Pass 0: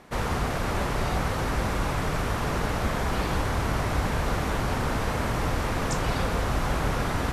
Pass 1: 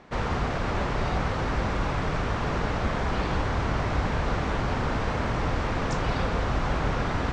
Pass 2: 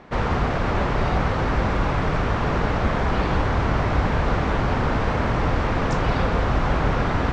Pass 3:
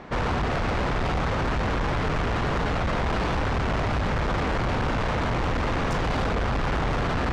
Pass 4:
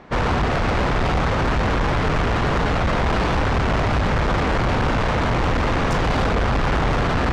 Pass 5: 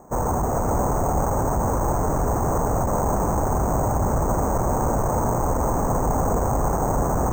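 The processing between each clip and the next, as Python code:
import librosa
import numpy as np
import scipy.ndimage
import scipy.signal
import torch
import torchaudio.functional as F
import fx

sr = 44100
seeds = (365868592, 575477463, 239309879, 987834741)

y1 = scipy.signal.sosfilt(scipy.signal.bessel(8, 4600.0, 'lowpass', norm='mag', fs=sr, output='sos'), x)
y2 = fx.high_shelf(y1, sr, hz=4800.0, db=-8.5)
y2 = F.gain(torch.from_numpy(y2), 5.5).numpy()
y3 = 10.0 ** (-26.5 / 20.0) * np.tanh(y2 / 10.0 ** (-26.5 / 20.0))
y3 = F.gain(torch.from_numpy(y3), 4.0).numpy()
y4 = fx.upward_expand(y3, sr, threshold_db=-40.0, expansion=1.5)
y4 = F.gain(torch.from_numpy(y4), 6.0).numpy()
y5 = fx.ladder_lowpass(y4, sr, hz=1100.0, resonance_pct=35)
y5 = y5 + 10.0 ** (-6.0 / 20.0) * np.pad(y5, (int(426 * sr / 1000.0), 0))[:len(y5)]
y5 = np.repeat(y5[::6], 6)[:len(y5)]
y5 = F.gain(torch.from_numpy(y5), 4.0).numpy()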